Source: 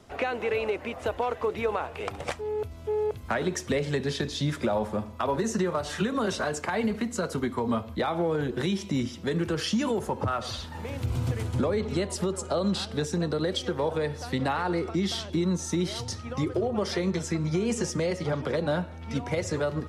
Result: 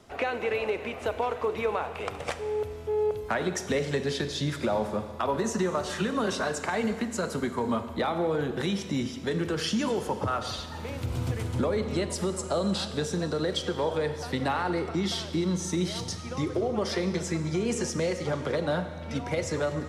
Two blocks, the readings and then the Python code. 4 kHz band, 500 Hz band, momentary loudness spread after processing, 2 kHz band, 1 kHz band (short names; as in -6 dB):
+0.5 dB, 0.0 dB, 4 LU, +0.5 dB, 0.0 dB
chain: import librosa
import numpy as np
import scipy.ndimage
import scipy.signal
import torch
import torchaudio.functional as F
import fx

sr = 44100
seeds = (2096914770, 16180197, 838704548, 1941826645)

y = fx.low_shelf(x, sr, hz=230.0, db=-3.5)
y = fx.rev_schroeder(y, sr, rt60_s=2.0, comb_ms=33, drr_db=10.0)